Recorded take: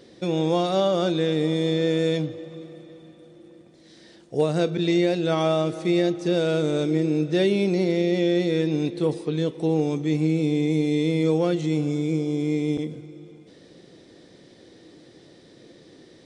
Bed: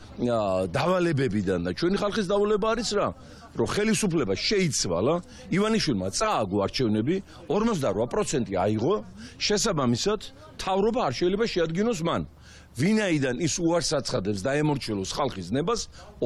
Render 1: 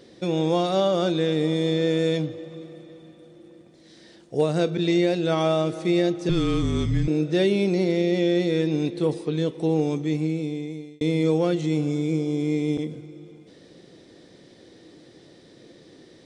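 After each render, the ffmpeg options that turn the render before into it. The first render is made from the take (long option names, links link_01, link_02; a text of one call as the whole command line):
ffmpeg -i in.wav -filter_complex "[0:a]asettb=1/sr,asplit=3[link_01][link_02][link_03];[link_01]atrim=end=6.294[link_04];[link_02]atrim=start=6.29:end=7.08,asetpts=PTS-STARTPTS,afade=type=in:duration=0.004:curve=qsin,afade=type=out:start_time=0.786:duration=0.004:curve=qsin,afreqshift=-190[link_05];[link_03]atrim=start=7.076[link_06];[link_04][link_05]acrossfade=duration=0.004:curve1=hsin:curve2=qsin[link_07];[link_07][link_06]acrossfade=duration=0.004:curve1=qsin:curve2=hsin,asplit=2[link_08][link_09];[link_08]atrim=end=11.01,asetpts=PTS-STARTPTS,afade=type=out:start_time=9.93:duration=1.08[link_10];[link_09]atrim=start=11.01,asetpts=PTS-STARTPTS,afade=type=in:duration=0.004:curve=hsin[link_11];[link_10][link_11]concat=n=2:v=0:a=1" out.wav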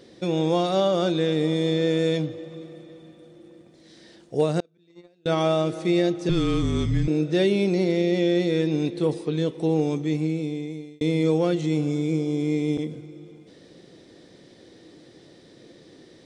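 ffmpeg -i in.wav -filter_complex "[0:a]asettb=1/sr,asplit=3[link_01][link_02][link_03];[link_01]atrim=end=4.604[link_04];[link_02]atrim=start=4.6:end=5.26,asetpts=PTS-STARTPTS,afade=type=in:duration=0.004:curve=qsin,afade=type=out:start_time=0.656:duration=0.004:curve=qsin,agate=range=-37dB:threshold=-16dB:ratio=16:release=100:detection=peak[link_05];[link_03]atrim=start=5.256[link_06];[link_04][link_05]acrossfade=duration=0.004:curve1=hsin:curve2=qsin[link_07];[link_07][link_06]acrossfade=duration=0.004:curve1=qsin:curve2=hsin" out.wav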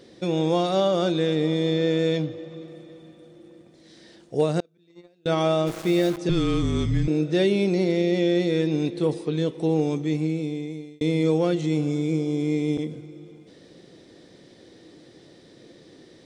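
ffmpeg -i in.wav -filter_complex "[0:a]asettb=1/sr,asplit=3[link_01][link_02][link_03];[link_01]atrim=end=1.354[link_04];[link_02]atrim=start=1.35:end=2.68,asetpts=PTS-STARTPTS,afade=type=in:duration=0.004:curve=qsin,afade=type=out:start_time=1.326:duration=0.004:curve=qsin,lowpass=6800[link_05];[link_03]atrim=start=2.676[link_06];[link_04][link_05]acrossfade=duration=0.004:curve1=hsin:curve2=qsin[link_07];[link_07][link_06]acrossfade=duration=0.004:curve1=qsin:curve2=hsin,asplit=3[link_08][link_09][link_10];[link_08]afade=type=out:start_time=5.66:duration=0.02[link_11];[link_09]aeval=exprs='val(0)*gte(abs(val(0)),0.0251)':channel_layout=same,afade=type=in:start_time=5.66:duration=0.02,afade=type=out:start_time=6.16:duration=0.02[link_12];[link_10]afade=type=in:start_time=6.16:duration=0.02[link_13];[link_11][link_12][link_13]amix=inputs=3:normalize=0" out.wav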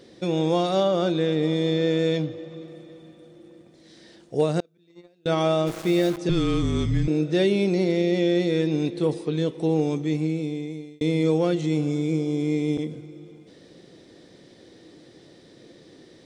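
ffmpeg -i in.wav -filter_complex "[0:a]asettb=1/sr,asplit=3[link_01][link_02][link_03];[link_01]atrim=end=0.834[link_04];[link_02]atrim=start=0.83:end=1.43,asetpts=PTS-STARTPTS,afade=type=in:duration=0.004:curve=qsin,afade=type=out:start_time=0.596:duration=0.004:curve=qsin,highshelf=frequency=4500:gain=-5.5[link_05];[link_03]atrim=start=1.426[link_06];[link_04][link_05]acrossfade=duration=0.004:curve1=hsin:curve2=qsin[link_07];[link_07][link_06]acrossfade=duration=0.004:curve1=qsin:curve2=hsin" out.wav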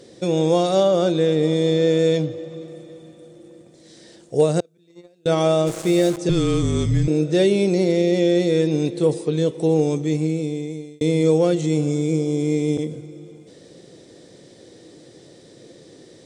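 ffmpeg -i in.wav -af "equalizer=frequency=125:width_type=o:width=1:gain=5,equalizer=frequency=500:width_type=o:width=1:gain=6,equalizer=frequency=8000:width_type=o:width=1:gain=12" out.wav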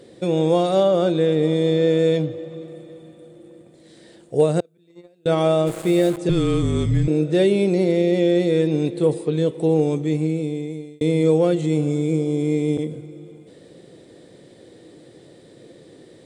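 ffmpeg -i in.wav -af "equalizer=frequency=5800:width=1.9:gain=-11.5" out.wav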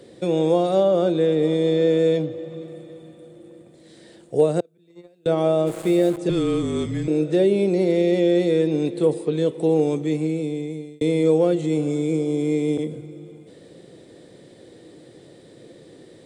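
ffmpeg -i in.wav -filter_complex "[0:a]acrossover=split=180|830[link_01][link_02][link_03];[link_01]acompressor=threshold=-37dB:ratio=6[link_04];[link_03]alimiter=level_in=2.5dB:limit=-24dB:level=0:latency=1:release=476,volume=-2.5dB[link_05];[link_04][link_02][link_05]amix=inputs=3:normalize=0" out.wav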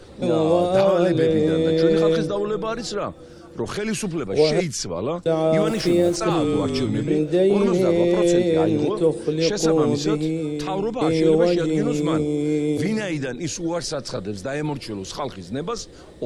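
ffmpeg -i in.wav -i bed.wav -filter_complex "[1:a]volume=-1.5dB[link_01];[0:a][link_01]amix=inputs=2:normalize=0" out.wav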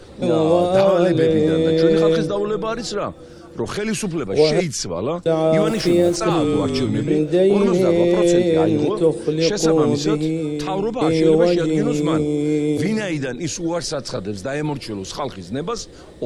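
ffmpeg -i in.wav -af "volume=2.5dB" out.wav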